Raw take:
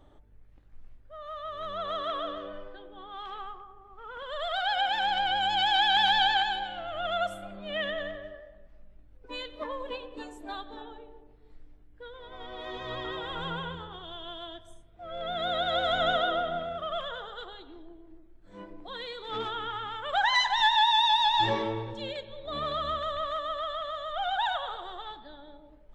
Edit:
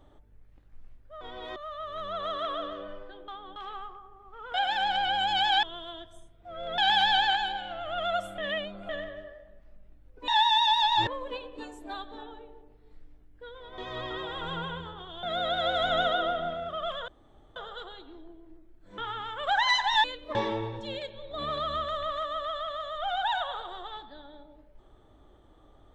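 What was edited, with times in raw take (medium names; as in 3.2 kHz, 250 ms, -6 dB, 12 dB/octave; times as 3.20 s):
2.93–3.21 s: reverse
4.19–4.76 s: delete
7.45–7.96 s: reverse
9.35–9.66 s: swap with 20.70–21.49 s
12.37–12.72 s: move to 1.21 s
14.17–15.32 s: move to 5.85 s
17.17 s: insert room tone 0.48 s
18.59–19.64 s: delete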